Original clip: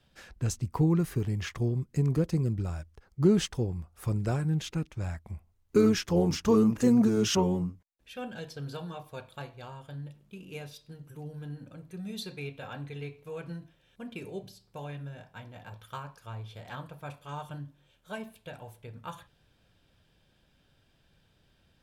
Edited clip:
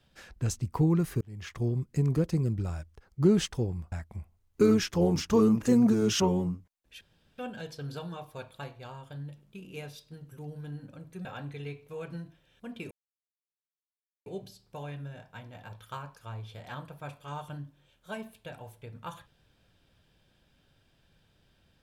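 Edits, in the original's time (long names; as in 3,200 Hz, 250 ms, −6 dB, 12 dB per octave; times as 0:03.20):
0:01.21–0:01.69: fade in linear
0:03.92–0:05.07: remove
0:08.16: splice in room tone 0.37 s
0:12.03–0:12.61: remove
0:14.27: splice in silence 1.35 s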